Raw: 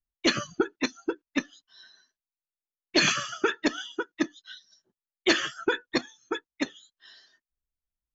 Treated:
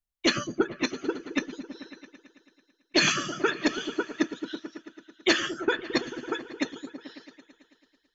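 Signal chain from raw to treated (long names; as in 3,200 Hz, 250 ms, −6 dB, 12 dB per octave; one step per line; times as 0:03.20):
echo whose low-pass opens from repeat to repeat 110 ms, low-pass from 200 Hz, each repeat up 1 octave, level −6 dB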